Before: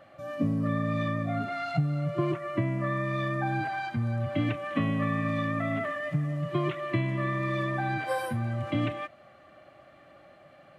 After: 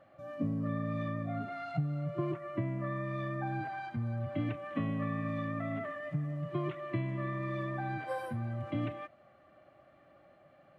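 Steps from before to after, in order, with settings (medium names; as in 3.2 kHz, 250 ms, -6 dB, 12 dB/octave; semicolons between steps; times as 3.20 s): treble shelf 2.3 kHz -9 dB; trim -6 dB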